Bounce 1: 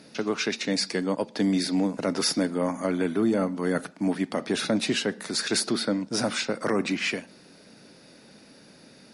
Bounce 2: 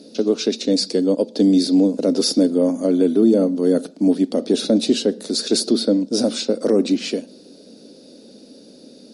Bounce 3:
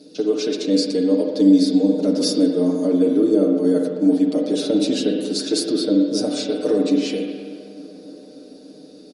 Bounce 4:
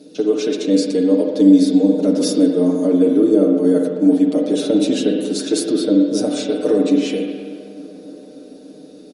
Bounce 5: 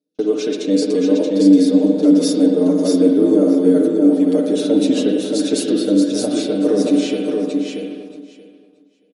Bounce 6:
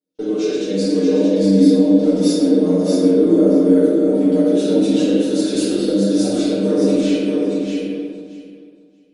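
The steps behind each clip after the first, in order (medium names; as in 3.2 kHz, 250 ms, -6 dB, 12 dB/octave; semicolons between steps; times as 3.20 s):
ten-band graphic EQ 125 Hz -9 dB, 250 Hz +11 dB, 500 Hz +11 dB, 1 kHz -8 dB, 2 kHz -12 dB, 4 kHz +8 dB, 8 kHz +3 dB
comb 6.6 ms, depth 93%; bucket-brigade echo 285 ms, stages 4096, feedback 82%, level -21.5 dB; spring tank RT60 1.6 s, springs 45/51/55 ms, chirp 70 ms, DRR 2 dB; trim -6 dB
peaking EQ 4.7 kHz -8.5 dB 0.41 oct; trim +3 dB
gate -29 dBFS, range -37 dB; on a send: feedback delay 628 ms, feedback 15%, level -4 dB; on the sum: trim -1 dB
simulated room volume 430 m³, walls mixed, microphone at 4.4 m; trim -10.5 dB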